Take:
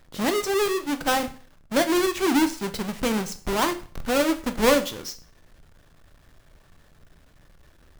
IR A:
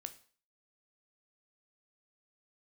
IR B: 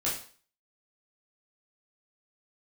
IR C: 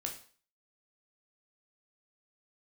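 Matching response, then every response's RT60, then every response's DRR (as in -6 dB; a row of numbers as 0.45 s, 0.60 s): A; 0.45 s, 0.45 s, 0.45 s; 9.0 dB, -7.5 dB, 1.0 dB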